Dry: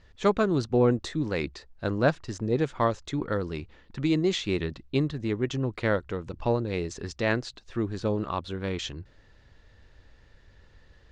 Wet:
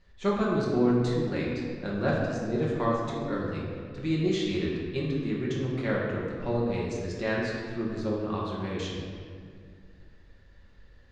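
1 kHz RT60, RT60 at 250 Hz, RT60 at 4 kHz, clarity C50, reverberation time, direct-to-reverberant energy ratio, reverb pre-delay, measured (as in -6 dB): 1.9 s, 2.8 s, 1.3 s, 0.0 dB, 2.1 s, -5.0 dB, 5 ms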